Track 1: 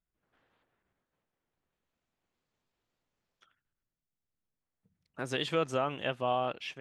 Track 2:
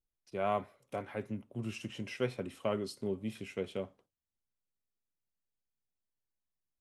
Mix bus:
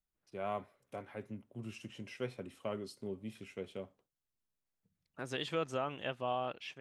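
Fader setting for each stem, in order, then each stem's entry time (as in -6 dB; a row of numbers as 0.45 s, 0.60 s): -5.5 dB, -6.0 dB; 0.00 s, 0.00 s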